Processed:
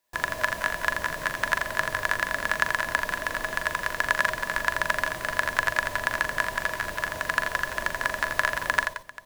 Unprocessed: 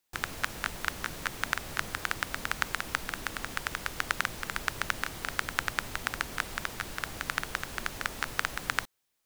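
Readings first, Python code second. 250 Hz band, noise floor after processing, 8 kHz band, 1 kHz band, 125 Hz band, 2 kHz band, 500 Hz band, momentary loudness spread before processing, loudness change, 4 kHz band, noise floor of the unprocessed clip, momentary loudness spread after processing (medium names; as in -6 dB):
+2.0 dB, -38 dBFS, +1.5 dB, +7.5 dB, +2.0 dB, +8.5 dB, +11.0 dB, 4 LU, +7.0 dB, +2.0 dB, -78 dBFS, 4 LU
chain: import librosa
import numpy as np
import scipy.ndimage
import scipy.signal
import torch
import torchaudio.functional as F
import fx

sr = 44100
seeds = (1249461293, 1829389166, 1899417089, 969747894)

p1 = fx.small_body(x, sr, hz=(630.0, 990.0, 1700.0), ring_ms=45, db=16)
y = p1 + fx.echo_multitap(p1, sr, ms=(41, 83, 174, 176, 395), db=(-9.0, -6.0, -13.5, -14.5, -18.0), dry=0)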